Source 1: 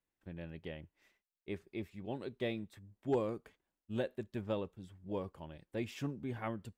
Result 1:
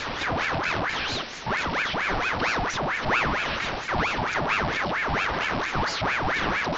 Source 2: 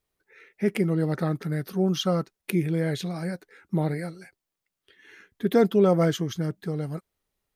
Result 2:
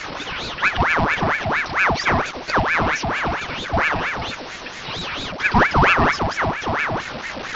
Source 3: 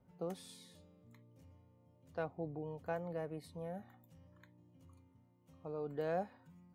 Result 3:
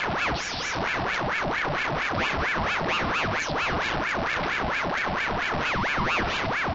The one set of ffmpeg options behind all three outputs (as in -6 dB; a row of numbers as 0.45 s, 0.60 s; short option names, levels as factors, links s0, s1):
-af "aeval=exprs='val(0)+0.5*0.0631*sgn(val(0))':c=same,afreqshift=120,acrusher=bits=3:mode=log:mix=0:aa=0.000001,equalizer=f=4000:t=o:w=0.77:g=-3.5,areverse,acompressor=mode=upward:threshold=0.0501:ratio=2.5,areverse,aresample=11025,aresample=44100,aeval=exprs='val(0)*sin(2*PI*1200*n/s+1200*0.7/4.4*sin(2*PI*4.4*n/s))':c=same,volume=1.88"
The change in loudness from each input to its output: +16.0 LU, +6.0 LU, +18.0 LU